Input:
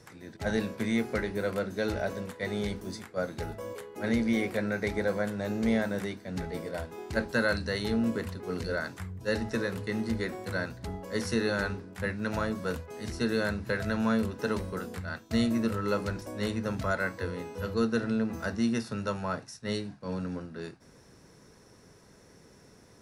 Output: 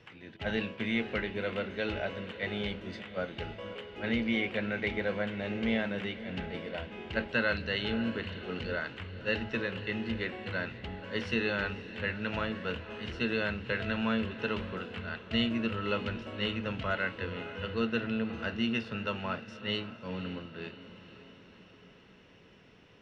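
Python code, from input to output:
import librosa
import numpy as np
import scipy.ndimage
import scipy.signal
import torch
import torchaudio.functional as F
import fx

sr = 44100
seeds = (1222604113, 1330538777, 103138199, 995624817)

y = fx.lowpass_res(x, sr, hz=2900.0, q=6.6)
y = fx.echo_diffused(y, sr, ms=543, feedback_pct=56, wet_db=-14.0)
y = y * librosa.db_to_amplitude(-4.0)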